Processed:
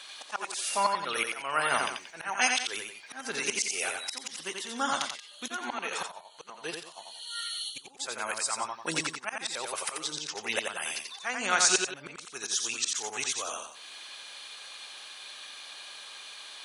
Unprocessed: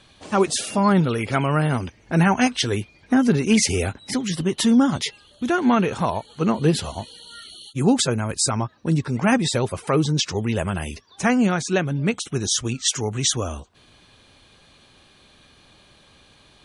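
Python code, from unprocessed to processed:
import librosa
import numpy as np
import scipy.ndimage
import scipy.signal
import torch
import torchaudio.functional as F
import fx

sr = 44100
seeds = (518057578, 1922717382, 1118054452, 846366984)

y = scipy.signal.sosfilt(scipy.signal.butter(2, 880.0, 'highpass', fs=sr, output='sos'), x)
y = fx.high_shelf(y, sr, hz=2900.0, db=5.5)
y = fx.auto_swell(y, sr, attack_ms=617.0)
y = fx.echo_multitap(y, sr, ms=(87, 180), db=(-4.0, -12.5))
y = fx.upward_expand(y, sr, threshold_db=-49.0, expansion=1.5, at=(6.06, 7.98), fade=0.02)
y = F.gain(torch.from_numpy(y), 6.0).numpy()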